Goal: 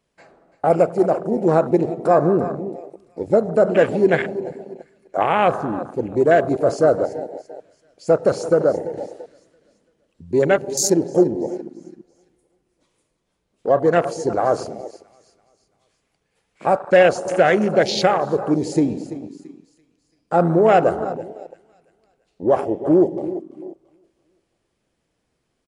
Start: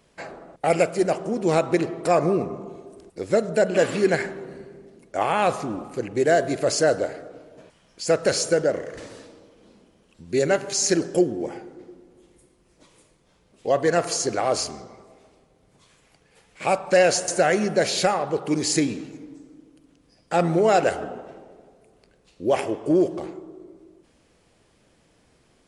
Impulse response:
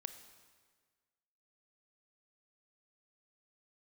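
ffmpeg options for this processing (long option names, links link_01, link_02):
-filter_complex "[0:a]asplit=2[link_01][link_02];[link_02]aecho=0:1:337|674|1011|1348:0.2|0.0898|0.0404|0.0182[link_03];[link_01][link_03]amix=inputs=2:normalize=0,afwtdn=0.0447,volume=4.5dB"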